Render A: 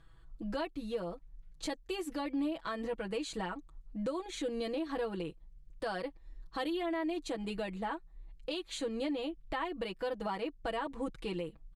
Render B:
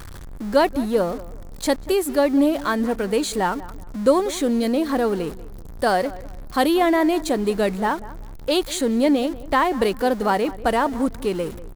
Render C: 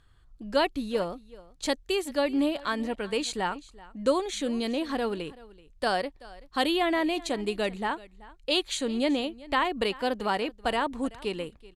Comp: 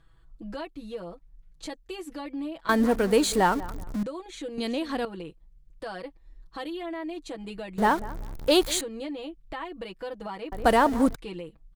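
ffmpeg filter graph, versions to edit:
-filter_complex "[1:a]asplit=3[a][b][c];[0:a]asplit=5[d][e][f][g][h];[d]atrim=end=2.692[i];[a]atrim=start=2.688:end=4.032[j];[e]atrim=start=4.028:end=4.582[k];[2:a]atrim=start=4.578:end=5.052[l];[f]atrim=start=5.048:end=7.782[m];[b]atrim=start=7.778:end=8.812[n];[g]atrim=start=8.808:end=10.522[o];[c]atrim=start=10.518:end=11.152[p];[h]atrim=start=11.148[q];[i][j]acrossfade=d=0.004:c1=hsin:c2=hsin[r];[r][k]acrossfade=d=0.004:c1=hsin:c2=hsin[s];[s][l]acrossfade=d=0.004:c1=hsin:c2=hsin[t];[t][m]acrossfade=d=0.004:c1=hsin:c2=hsin[u];[u][n]acrossfade=d=0.004:c1=hsin:c2=hsin[v];[v][o]acrossfade=d=0.004:c1=hsin:c2=hsin[w];[w][p]acrossfade=d=0.004:c1=hsin:c2=hsin[x];[x][q]acrossfade=d=0.004:c1=hsin:c2=hsin"

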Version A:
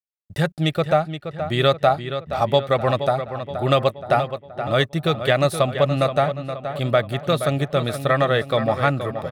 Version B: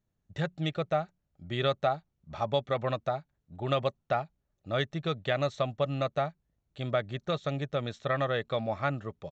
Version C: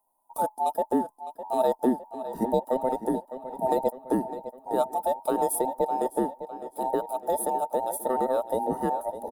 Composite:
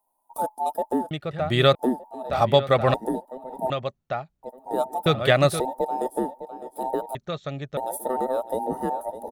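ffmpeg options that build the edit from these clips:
-filter_complex "[0:a]asplit=3[a][b][c];[1:a]asplit=2[d][e];[2:a]asplit=6[f][g][h][i][j][k];[f]atrim=end=1.112[l];[a]atrim=start=1.108:end=1.752[m];[g]atrim=start=1.748:end=2.302[n];[b]atrim=start=2.298:end=2.942[o];[h]atrim=start=2.938:end=3.702[p];[d]atrim=start=3.698:end=4.432[q];[i]atrim=start=4.428:end=5.062[r];[c]atrim=start=5.058:end=5.602[s];[j]atrim=start=5.598:end=7.152[t];[e]atrim=start=7.148:end=7.772[u];[k]atrim=start=7.768[v];[l][m]acrossfade=d=0.004:c1=hsin:c2=hsin[w];[w][n]acrossfade=d=0.004:c1=hsin:c2=hsin[x];[x][o]acrossfade=d=0.004:c1=hsin:c2=hsin[y];[y][p]acrossfade=d=0.004:c1=hsin:c2=hsin[z];[z][q]acrossfade=d=0.004:c1=hsin:c2=hsin[aa];[aa][r]acrossfade=d=0.004:c1=hsin:c2=hsin[ab];[ab][s]acrossfade=d=0.004:c1=hsin:c2=hsin[ac];[ac][t]acrossfade=d=0.004:c1=hsin:c2=hsin[ad];[ad][u]acrossfade=d=0.004:c1=hsin:c2=hsin[ae];[ae][v]acrossfade=d=0.004:c1=hsin:c2=hsin"

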